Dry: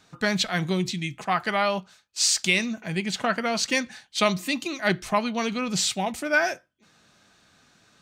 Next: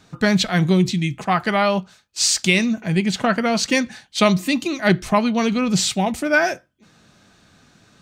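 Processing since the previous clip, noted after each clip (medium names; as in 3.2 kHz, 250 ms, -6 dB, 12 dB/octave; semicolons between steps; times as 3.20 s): bass shelf 410 Hz +8 dB; trim +3.5 dB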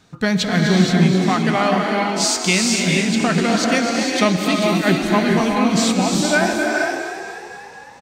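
on a send: frequency-shifting echo 251 ms, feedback 60%, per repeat +42 Hz, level -9 dB; on the sum: gated-style reverb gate 480 ms rising, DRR 0.5 dB; trim -1.5 dB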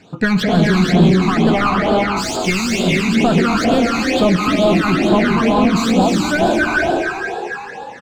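overdrive pedal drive 25 dB, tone 1 kHz, clips at -1 dBFS; phase shifter stages 12, 2.2 Hz, lowest notch 550–2000 Hz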